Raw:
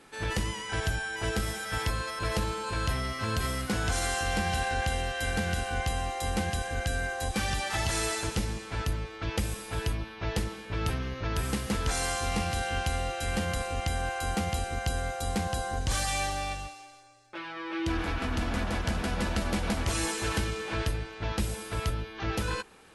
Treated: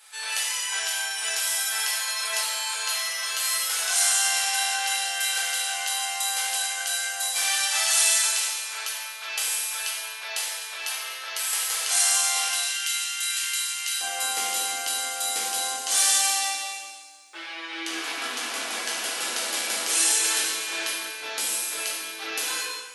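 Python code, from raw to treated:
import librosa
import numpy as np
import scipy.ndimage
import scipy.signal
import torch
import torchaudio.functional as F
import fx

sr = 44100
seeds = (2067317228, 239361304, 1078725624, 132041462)

y = fx.highpass(x, sr, hz=fx.steps((0.0, 630.0), (12.48, 1500.0), (14.01, 290.0)), slope=24)
y = fx.tilt_eq(y, sr, slope=4.5)
y = fx.rev_gated(y, sr, seeds[0], gate_ms=400, shape='falling', drr_db=-5.0)
y = y * librosa.db_to_amplitude(-4.5)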